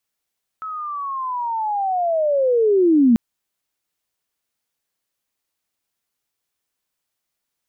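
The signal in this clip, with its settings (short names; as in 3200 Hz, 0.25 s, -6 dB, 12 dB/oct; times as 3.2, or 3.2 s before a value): chirp linear 1300 Hz -> 220 Hz -26.5 dBFS -> -9.5 dBFS 2.54 s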